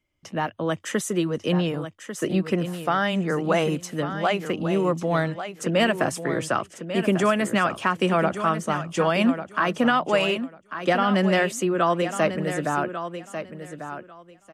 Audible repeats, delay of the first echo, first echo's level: 2, 1,145 ms, −10.0 dB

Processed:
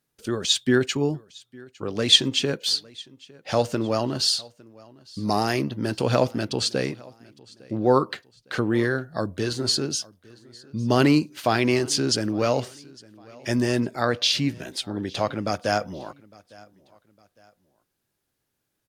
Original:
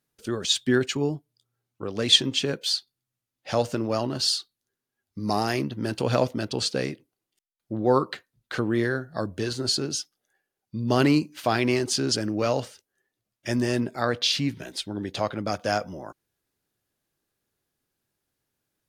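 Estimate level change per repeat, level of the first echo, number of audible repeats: −8.5 dB, −24.0 dB, 2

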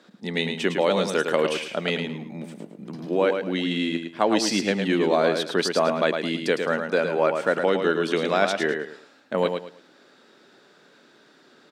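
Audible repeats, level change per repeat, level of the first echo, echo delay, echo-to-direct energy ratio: 3, −11.5 dB, −6.0 dB, 108 ms, −5.5 dB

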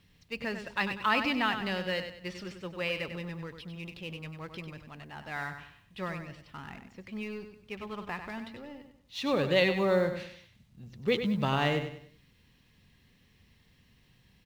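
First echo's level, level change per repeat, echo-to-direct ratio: −8.5 dB, −9.0 dB, −8.0 dB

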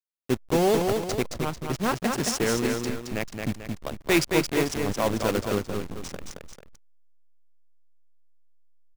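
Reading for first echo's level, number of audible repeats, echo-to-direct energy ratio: −4.5 dB, 2, −4.0 dB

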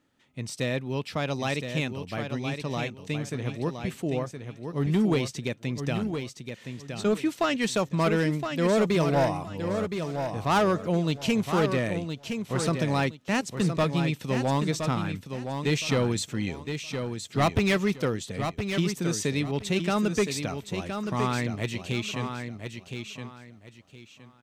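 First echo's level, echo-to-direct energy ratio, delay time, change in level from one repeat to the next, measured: −7.0 dB, −6.5 dB, 1,017 ms, −12.0 dB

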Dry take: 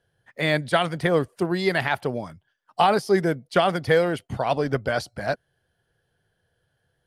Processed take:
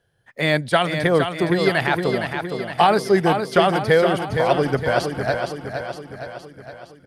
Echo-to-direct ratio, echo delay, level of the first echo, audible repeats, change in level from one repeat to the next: −5.0 dB, 464 ms, −6.5 dB, 6, −5.0 dB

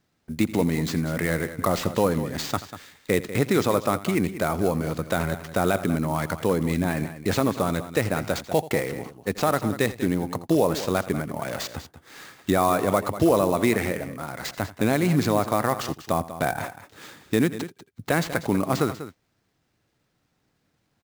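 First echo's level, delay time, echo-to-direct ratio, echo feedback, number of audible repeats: −17.5 dB, 84 ms, −11.5 dB, repeats not evenly spaced, 2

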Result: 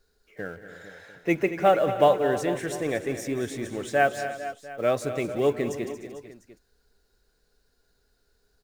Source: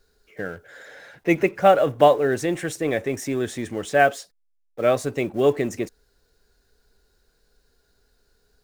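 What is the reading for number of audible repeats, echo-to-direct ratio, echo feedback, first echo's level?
5, −8.0 dB, repeats not evenly spaced, −16.5 dB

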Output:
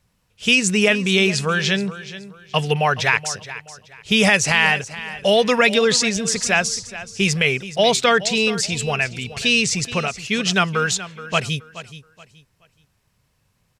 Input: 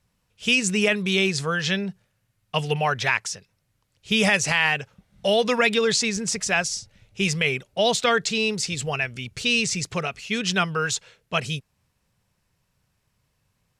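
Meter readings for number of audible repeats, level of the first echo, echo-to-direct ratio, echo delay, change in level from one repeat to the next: 2, −15.0 dB, −14.5 dB, 425 ms, −11.0 dB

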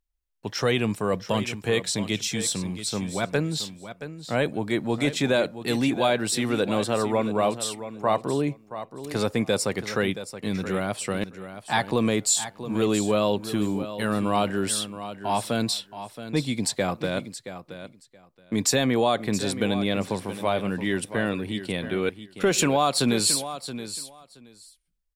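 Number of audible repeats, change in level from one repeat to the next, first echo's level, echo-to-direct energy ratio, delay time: 2, −16.0 dB, −12.0 dB, −12.0 dB, 674 ms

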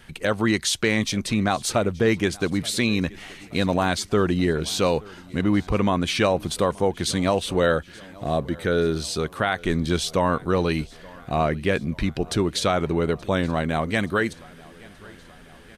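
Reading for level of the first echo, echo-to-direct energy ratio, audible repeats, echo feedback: −23.5 dB, −21.5 dB, 3, 60%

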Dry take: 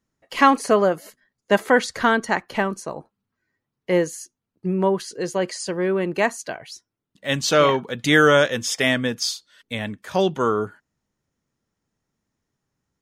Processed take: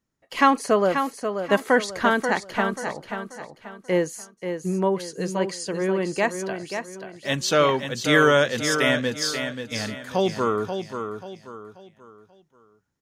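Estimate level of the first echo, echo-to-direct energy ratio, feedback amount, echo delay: −7.5 dB, −7.0 dB, 36%, 535 ms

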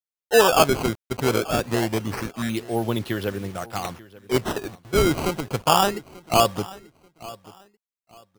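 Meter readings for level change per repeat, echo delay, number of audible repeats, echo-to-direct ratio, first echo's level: −11.5 dB, 887 ms, 2, −19.5 dB, −20.0 dB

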